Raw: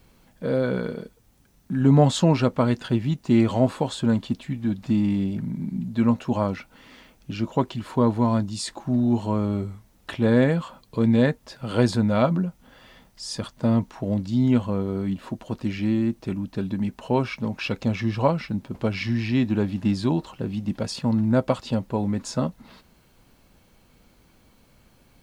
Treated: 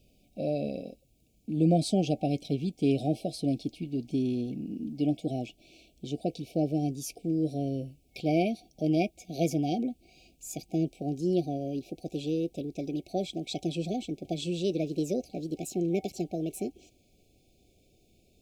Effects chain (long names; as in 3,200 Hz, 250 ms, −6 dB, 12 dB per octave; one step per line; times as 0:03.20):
gliding playback speed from 113% → 161%
brick-wall band-stop 770–2,200 Hz
level −7 dB